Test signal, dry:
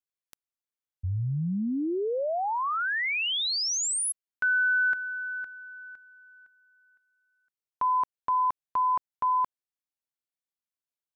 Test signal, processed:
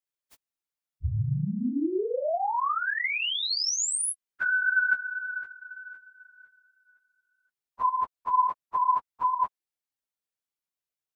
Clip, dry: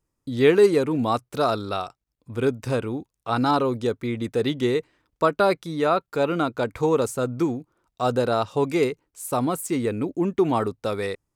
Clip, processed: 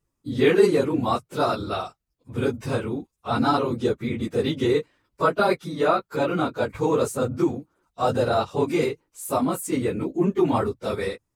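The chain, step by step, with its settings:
random phases in long frames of 50 ms

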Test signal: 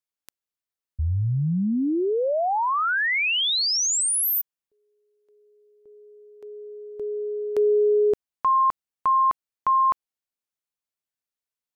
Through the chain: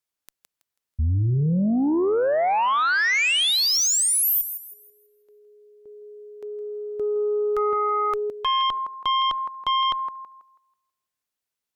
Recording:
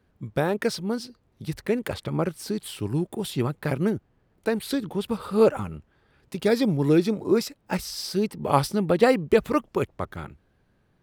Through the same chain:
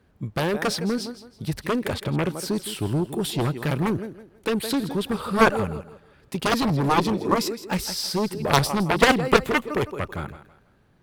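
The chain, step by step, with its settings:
feedback echo with a high-pass in the loop 163 ms, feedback 31%, high-pass 180 Hz, level −13.5 dB
harmonic generator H 2 −12 dB, 5 −20 dB, 6 −42 dB, 7 −6 dB, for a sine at −4.5 dBFS
level −1 dB

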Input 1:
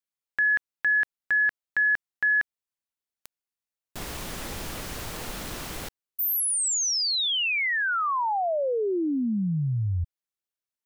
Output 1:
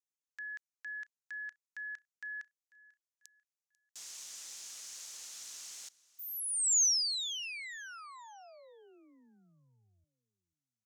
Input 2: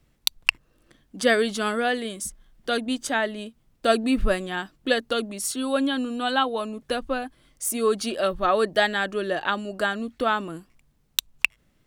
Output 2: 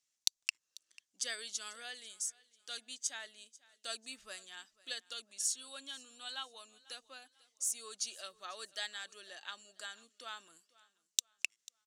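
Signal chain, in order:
resonant band-pass 6,500 Hz, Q 2.7
on a send: repeating echo 493 ms, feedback 36%, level −22 dB

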